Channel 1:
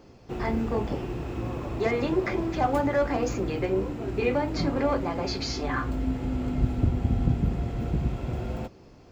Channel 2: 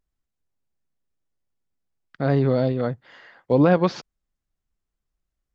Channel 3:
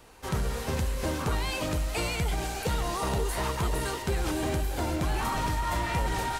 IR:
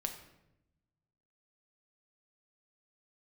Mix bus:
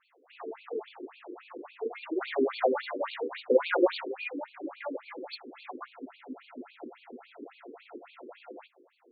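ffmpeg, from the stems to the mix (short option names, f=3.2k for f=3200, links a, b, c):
-filter_complex "[0:a]adynamicequalizer=threshold=0.00891:dfrequency=540:dqfactor=2.5:tfrequency=540:tqfactor=2.5:attack=5:release=100:ratio=0.375:range=2:mode=cutabove:tftype=bell,volume=-1dB[a];[1:a]asubboost=boost=3:cutoff=97,volume=3dB,asplit=3[b][c][d];[c]volume=-4.5dB[e];[2:a]volume=0dB[f];[d]apad=whole_len=282053[g];[f][g]sidechaingate=range=-33dB:threshold=-50dB:ratio=16:detection=peak[h];[3:a]atrim=start_sample=2205[i];[e][i]afir=irnorm=-1:irlink=0[j];[a][b][h][j]amix=inputs=4:normalize=0,asoftclip=type=tanh:threshold=-9dB,equalizer=f=230:t=o:w=2.2:g=-3.5,afftfilt=real='re*between(b*sr/1024,340*pow(3300/340,0.5+0.5*sin(2*PI*3.6*pts/sr))/1.41,340*pow(3300/340,0.5+0.5*sin(2*PI*3.6*pts/sr))*1.41)':imag='im*between(b*sr/1024,340*pow(3300/340,0.5+0.5*sin(2*PI*3.6*pts/sr))/1.41,340*pow(3300/340,0.5+0.5*sin(2*PI*3.6*pts/sr))*1.41)':win_size=1024:overlap=0.75"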